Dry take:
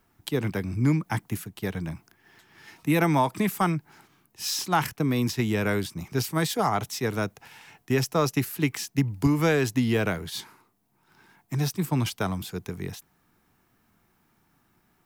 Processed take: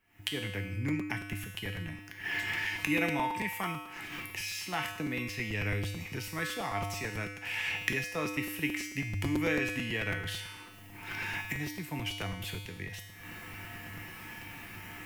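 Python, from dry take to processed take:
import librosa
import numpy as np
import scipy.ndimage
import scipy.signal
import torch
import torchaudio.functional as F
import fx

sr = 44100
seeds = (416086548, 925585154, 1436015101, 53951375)

y = fx.recorder_agc(x, sr, target_db=-21.0, rise_db_per_s=76.0, max_gain_db=30)
y = fx.band_shelf(y, sr, hz=2300.0, db=11.5, octaves=1.0)
y = fx.comb_fb(y, sr, f0_hz=100.0, decay_s=1.1, harmonics='odd', damping=0.0, mix_pct=90)
y = fx.buffer_crackle(y, sr, first_s=0.88, period_s=0.11, block=256, kind='repeat')
y = y * 10.0 ** (4.5 / 20.0)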